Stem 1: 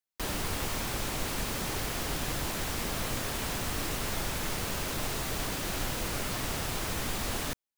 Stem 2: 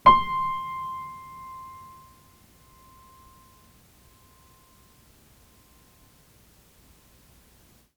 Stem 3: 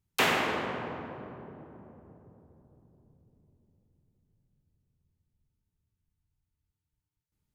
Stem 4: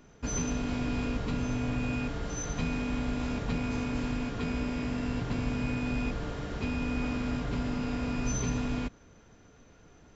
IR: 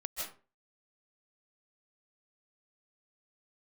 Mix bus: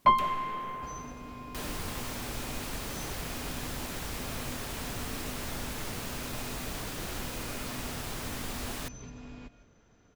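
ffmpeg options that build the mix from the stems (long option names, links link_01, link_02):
-filter_complex "[0:a]adelay=1350,volume=-4.5dB[link_01];[1:a]volume=-9dB,asplit=2[link_02][link_03];[link_03]volume=-9dB[link_04];[2:a]acrossover=split=320[link_05][link_06];[link_06]acompressor=threshold=-33dB:ratio=6[link_07];[link_05][link_07]amix=inputs=2:normalize=0,volume=-9.5dB[link_08];[3:a]acompressor=threshold=-35dB:ratio=12,adelay=600,volume=-7.5dB,asplit=2[link_09][link_10];[link_10]volume=-11.5dB[link_11];[4:a]atrim=start_sample=2205[link_12];[link_04][link_11]amix=inputs=2:normalize=0[link_13];[link_13][link_12]afir=irnorm=-1:irlink=0[link_14];[link_01][link_02][link_08][link_09][link_14]amix=inputs=5:normalize=0"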